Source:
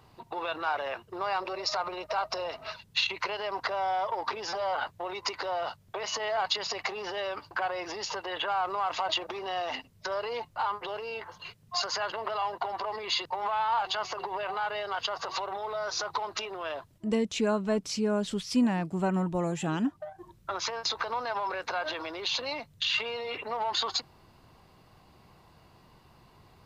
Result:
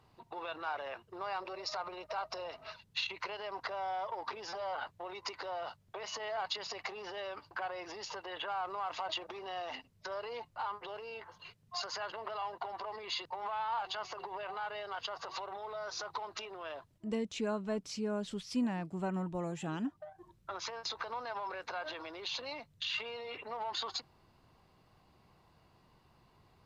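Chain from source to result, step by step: high shelf 9500 Hz -5 dB; gain -8 dB

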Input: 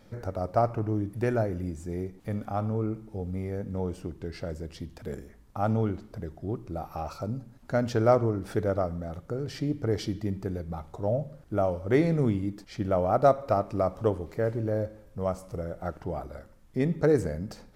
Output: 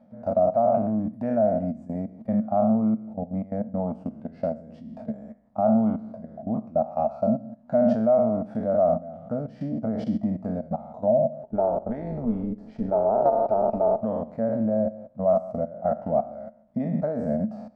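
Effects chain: spectral trails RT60 0.64 s; level quantiser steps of 16 dB; double band-pass 380 Hz, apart 1.5 oct; 11.43–14.02 AM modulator 220 Hz, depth 40%; maximiser +27 dB; gain -9 dB

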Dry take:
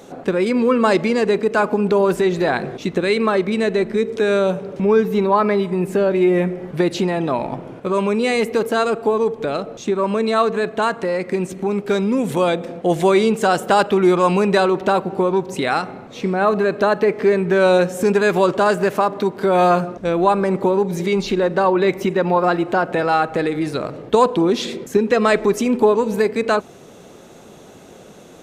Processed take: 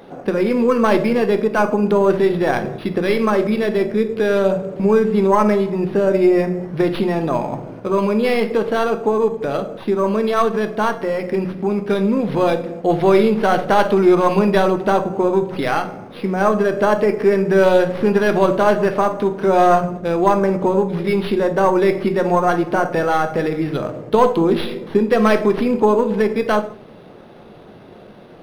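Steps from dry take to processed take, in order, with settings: tracing distortion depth 0.091 ms; on a send at -7 dB: reverb RT60 0.50 s, pre-delay 8 ms; on the sum: decimation joined by straight lines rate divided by 6×

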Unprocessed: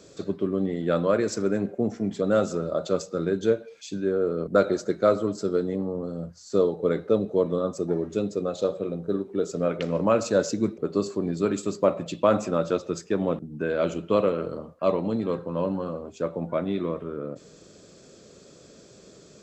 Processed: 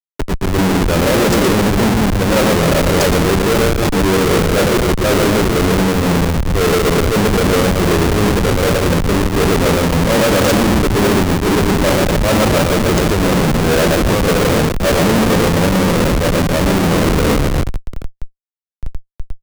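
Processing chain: reverse; compressor 6:1, threshold -34 dBFS, peak gain reduction 18.5 dB; reverse; reverse bouncing-ball echo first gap 0.12 s, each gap 1.25×, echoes 5; Schmitt trigger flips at -37.5 dBFS; maximiser +34.5 dB; three-band expander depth 70%; gain -9.5 dB

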